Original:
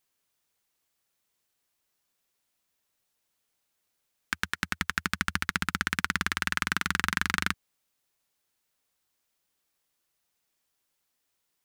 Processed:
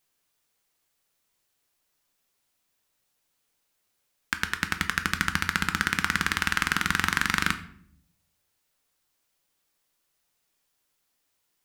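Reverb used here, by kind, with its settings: shoebox room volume 100 m³, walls mixed, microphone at 0.34 m; gain +2.5 dB

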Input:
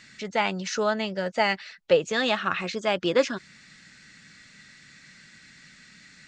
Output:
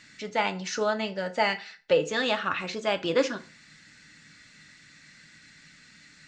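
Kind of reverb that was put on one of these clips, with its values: FDN reverb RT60 0.39 s, low-frequency decay 1×, high-frequency decay 0.8×, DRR 7.5 dB; gain -2.5 dB

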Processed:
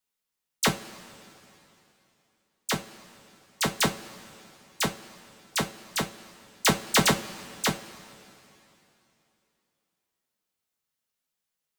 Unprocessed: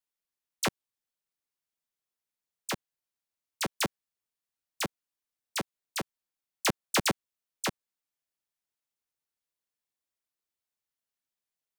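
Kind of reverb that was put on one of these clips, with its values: two-slope reverb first 0.24 s, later 3.1 s, from -21 dB, DRR 3 dB; gain +4 dB

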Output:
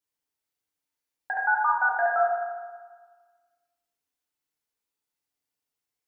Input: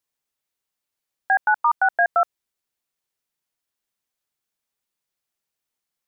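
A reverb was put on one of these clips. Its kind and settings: FDN reverb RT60 1.5 s, low-frequency decay 0.95×, high-frequency decay 0.75×, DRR -4 dB; gain -8.5 dB

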